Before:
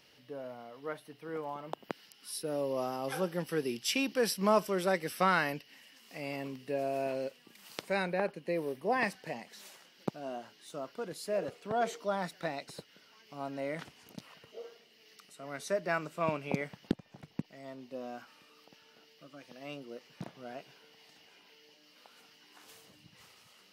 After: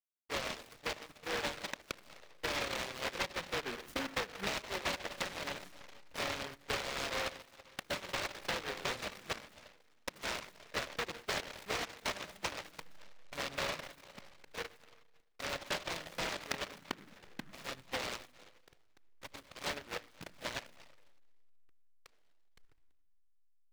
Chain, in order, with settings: reverb removal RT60 1.5 s; band-pass 580 Hz, Q 5.2; backlash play -58.5 dBFS; on a send at -14 dB: reverb RT60 1.3 s, pre-delay 7 ms; on the sum: compressor 20:1, threshold -48 dBFS, peak gain reduction 20.5 dB; in parallel at -7 dB: sample-and-hold 38×; on the sum: envelope flanger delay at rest 3.2 ms, full sweep at -49 dBFS; noise-modulated delay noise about 1400 Hz, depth 0.39 ms; gain +14 dB

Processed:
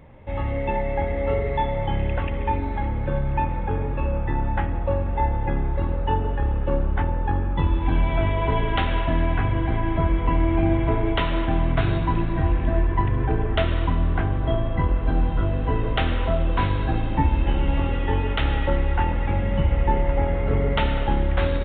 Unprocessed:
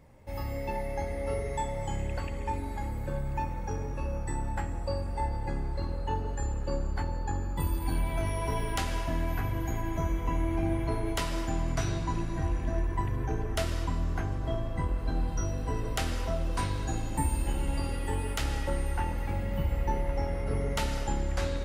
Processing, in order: downsampling 8000 Hz; gain +9 dB

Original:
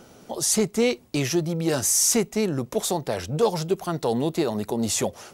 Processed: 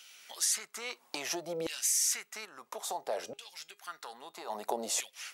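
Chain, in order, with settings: bell 200 Hz +6.5 dB 1.3 oct; compressor 6:1, threshold -27 dBFS, peak gain reduction 13.5 dB; LFO high-pass saw down 0.6 Hz 510–2800 Hz; 2.45–4.5 resonator 410 Hz, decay 0.2 s, harmonics all, mix 50%

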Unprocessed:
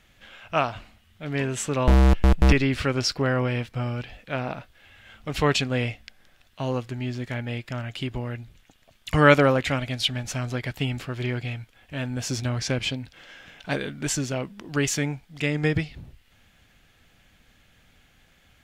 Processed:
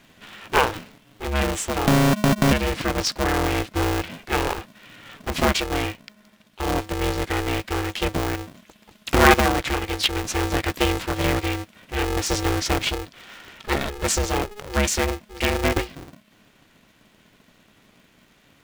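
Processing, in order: vocal rider within 4 dB 0.5 s; polarity switched at an audio rate 210 Hz; gain +2 dB

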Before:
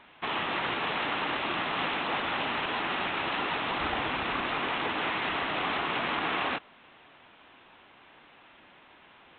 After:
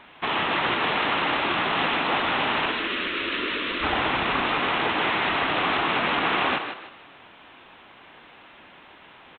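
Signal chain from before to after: 2.71–3.83 fixed phaser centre 330 Hz, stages 4; on a send: frequency-shifting echo 0.154 s, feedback 32%, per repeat +40 Hz, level -8 dB; on the sum: gain +6 dB

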